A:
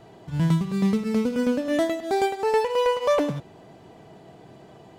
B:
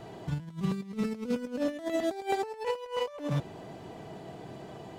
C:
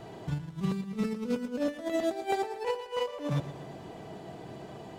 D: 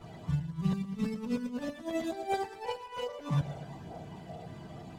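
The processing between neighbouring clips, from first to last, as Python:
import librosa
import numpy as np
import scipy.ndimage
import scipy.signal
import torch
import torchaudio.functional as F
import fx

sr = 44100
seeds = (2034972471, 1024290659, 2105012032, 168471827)

y1 = fx.over_compress(x, sr, threshold_db=-29.0, ratio=-0.5)
y1 = y1 * 10.0 ** (-3.0 / 20.0)
y2 = fx.echo_feedback(y1, sr, ms=119, feedback_pct=56, wet_db=-13.5)
y3 = fx.chorus_voices(y2, sr, voices=6, hz=0.59, base_ms=12, depth_ms=1.0, mix_pct=65)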